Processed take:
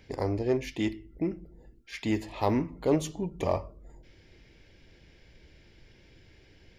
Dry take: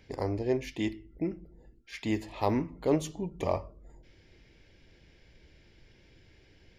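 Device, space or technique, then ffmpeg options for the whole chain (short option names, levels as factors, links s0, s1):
parallel distortion: -filter_complex "[0:a]asplit=2[s0][s1];[s1]asoftclip=type=hard:threshold=0.0473,volume=0.316[s2];[s0][s2]amix=inputs=2:normalize=0"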